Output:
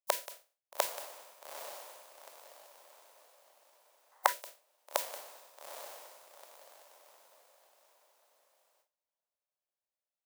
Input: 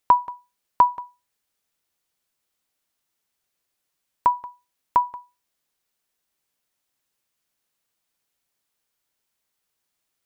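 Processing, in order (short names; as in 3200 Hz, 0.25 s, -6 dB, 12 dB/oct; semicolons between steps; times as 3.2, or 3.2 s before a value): spectral contrast lowered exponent 0.11; compressor 2:1, threshold -40 dBFS, peak gain reduction 17 dB; on a send: diffused feedback echo 0.849 s, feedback 41%, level -9 dB; on the sum: spectral gain 4.12–4.32, 750–2100 Hz +10 dB; resonant high-pass 580 Hz, resonance Q 4.9; gate with hold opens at -60 dBFS; gain -2 dB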